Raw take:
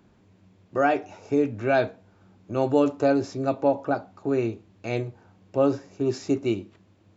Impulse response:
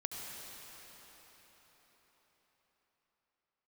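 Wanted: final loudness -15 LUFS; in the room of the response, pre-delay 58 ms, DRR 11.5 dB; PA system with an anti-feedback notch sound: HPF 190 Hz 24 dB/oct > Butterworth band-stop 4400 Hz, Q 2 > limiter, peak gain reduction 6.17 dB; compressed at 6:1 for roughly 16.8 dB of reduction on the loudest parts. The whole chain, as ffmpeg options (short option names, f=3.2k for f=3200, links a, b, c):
-filter_complex "[0:a]acompressor=threshold=-35dB:ratio=6,asplit=2[a][b];[1:a]atrim=start_sample=2205,adelay=58[c];[b][c]afir=irnorm=-1:irlink=0,volume=-12.5dB[d];[a][d]amix=inputs=2:normalize=0,highpass=f=190:w=0.5412,highpass=f=190:w=1.3066,asuperstop=centerf=4400:order=8:qfactor=2,volume=27.5dB,alimiter=limit=-3.5dB:level=0:latency=1"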